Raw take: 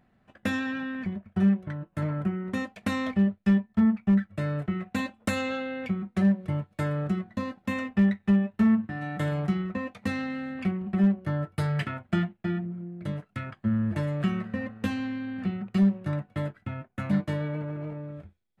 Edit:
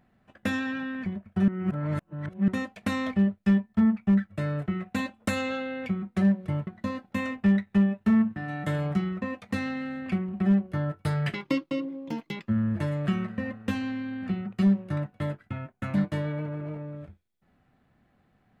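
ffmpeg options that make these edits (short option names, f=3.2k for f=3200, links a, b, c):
-filter_complex "[0:a]asplit=6[a][b][c][d][e][f];[a]atrim=end=1.482[g];[b]atrim=start=1.478:end=2.482,asetpts=PTS-STARTPTS,areverse[h];[c]atrim=start=2.478:end=6.672[i];[d]atrim=start=7.198:end=11.874[j];[e]atrim=start=11.87:end=13.64,asetpts=PTS-STARTPTS,asetrate=68355,aresample=44100,atrim=end_sample=50359,asetpts=PTS-STARTPTS[k];[f]atrim=start=13.636[l];[g][h]acrossfade=d=0.004:c1=hsin:c2=hsin[m];[m][i]acrossfade=d=0.004:c1=hsin:c2=hsin[n];[n][j]acrossfade=d=0.004:c1=hsin:c2=hsin[o];[o][k]acrossfade=d=0.004:c1=hsin:c2=hsin[p];[p][l]acrossfade=d=0.004:c1=hsin:c2=hsin"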